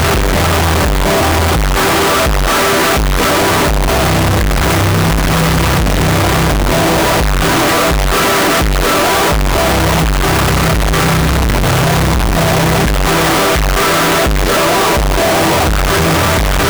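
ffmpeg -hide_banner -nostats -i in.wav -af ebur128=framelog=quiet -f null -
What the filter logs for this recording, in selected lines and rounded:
Integrated loudness:
  I:         -11.3 LUFS
  Threshold: -21.3 LUFS
Loudness range:
  LRA:         0.6 LU
  Threshold: -31.3 LUFS
  LRA low:   -11.6 LUFS
  LRA high:  -11.0 LUFS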